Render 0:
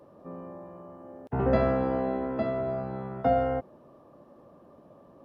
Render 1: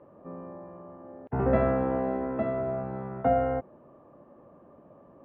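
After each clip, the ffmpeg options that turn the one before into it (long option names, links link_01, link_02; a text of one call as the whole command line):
ffmpeg -i in.wav -af "lowpass=frequency=2500:width=0.5412,lowpass=frequency=2500:width=1.3066" out.wav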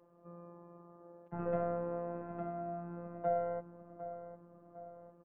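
ffmpeg -i in.wav -filter_complex "[0:a]asplit=2[link_01][link_02];[link_02]adelay=754,lowpass=frequency=1600:poles=1,volume=-11dB,asplit=2[link_03][link_04];[link_04]adelay=754,lowpass=frequency=1600:poles=1,volume=0.54,asplit=2[link_05][link_06];[link_06]adelay=754,lowpass=frequency=1600:poles=1,volume=0.54,asplit=2[link_07][link_08];[link_08]adelay=754,lowpass=frequency=1600:poles=1,volume=0.54,asplit=2[link_09][link_10];[link_10]adelay=754,lowpass=frequency=1600:poles=1,volume=0.54,asplit=2[link_11][link_12];[link_12]adelay=754,lowpass=frequency=1600:poles=1,volume=0.54[link_13];[link_01][link_03][link_05][link_07][link_09][link_11][link_13]amix=inputs=7:normalize=0,afftfilt=real='hypot(re,im)*cos(PI*b)':imag='0':win_size=1024:overlap=0.75,volume=-8dB" out.wav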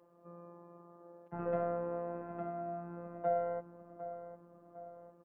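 ffmpeg -i in.wav -af "lowshelf=frequency=130:gain=-8.5,volume=1dB" out.wav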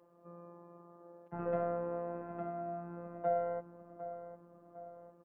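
ffmpeg -i in.wav -af anull out.wav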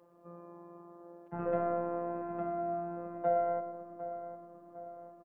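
ffmpeg -i in.wav -filter_complex "[0:a]asplit=2[link_01][link_02];[link_02]adelay=119,lowpass=frequency=1400:poles=1,volume=-8dB,asplit=2[link_03][link_04];[link_04]adelay=119,lowpass=frequency=1400:poles=1,volume=0.48,asplit=2[link_05][link_06];[link_06]adelay=119,lowpass=frequency=1400:poles=1,volume=0.48,asplit=2[link_07][link_08];[link_08]adelay=119,lowpass=frequency=1400:poles=1,volume=0.48,asplit=2[link_09][link_10];[link_10]adelay=119,lowpass=frequency=1400:poles=1,volume=0.48,asplit=2[link_11][link_12];[link_12]adelay=119,lowpass=frequency=1400:poles=1,volume=0.48[link_13];[link_01][link_03][link_05][link_07][link_09][link_11][link_13]amix=inputs=7:normalize=0,volume=2.5dB" out.wav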